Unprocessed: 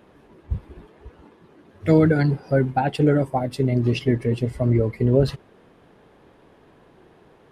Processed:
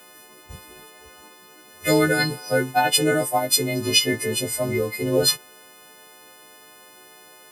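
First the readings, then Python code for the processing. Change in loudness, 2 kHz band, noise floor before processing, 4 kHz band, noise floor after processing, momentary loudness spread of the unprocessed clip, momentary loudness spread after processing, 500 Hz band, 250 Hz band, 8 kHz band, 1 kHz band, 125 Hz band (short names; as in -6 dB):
+0.5 dB, +8.5 dB, -54 dBFS, +17.0 dB, -49 dBFS, 11 LU, 6 LU, -1.0 dB, -4.5 dB, n/a, +3.0 dB, -9.5 dB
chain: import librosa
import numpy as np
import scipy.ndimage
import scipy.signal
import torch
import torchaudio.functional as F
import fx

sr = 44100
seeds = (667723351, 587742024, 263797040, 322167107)

y = fx.freq_snap(x, sr, grid_st=3)
y = fx.riaa(y, sr, side='recording')
y = y * librosa.db_to_amplitude(2.5)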